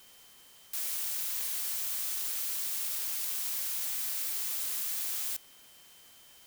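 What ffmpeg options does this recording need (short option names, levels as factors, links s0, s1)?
-af "adeclick=t=4,bandreject=f=3100:w=30,afftdn=nr=27:nf=-56"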